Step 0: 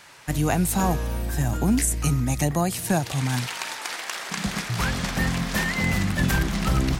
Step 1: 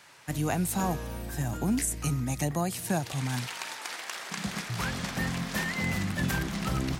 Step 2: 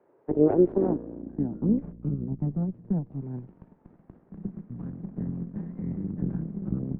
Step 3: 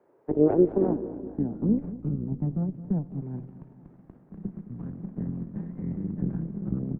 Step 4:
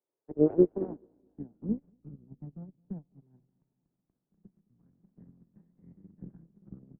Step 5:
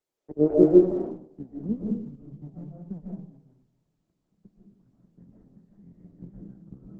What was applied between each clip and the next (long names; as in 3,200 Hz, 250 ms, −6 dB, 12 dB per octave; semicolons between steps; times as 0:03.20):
high-pass filter 77 Hz; level −6 dB
harmonic generator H 4 −7 dB, 7 −24 dB, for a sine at −15.5 dBFS; three-way crossover with the lows and the highs turned down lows −15 dB, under 280 Hz, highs −14 dB, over 2,500 Hz; low-pass filter sweep 410 Hz → 180 Hz, 0:00.41–0:01.92; level +6.5 dB
repeating echo 214 ms, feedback 59%, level −15.5 dB
expander for the loud parts 2.5 to 1, over −35 dBFS
convolution reverb RT60 0.50 s, pre-delay 105 ms, DRR −3.5 dB; level +2 dB; Opus 16 kbit/s 48,000 Hz